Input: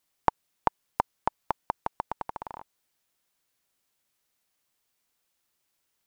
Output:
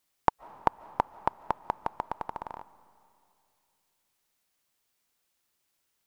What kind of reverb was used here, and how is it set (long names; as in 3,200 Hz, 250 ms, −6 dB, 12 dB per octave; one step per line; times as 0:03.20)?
comb and all-pass reverb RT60 2.6 s, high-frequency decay 0.85×, pre-delay 105 ms, DRR 19 dB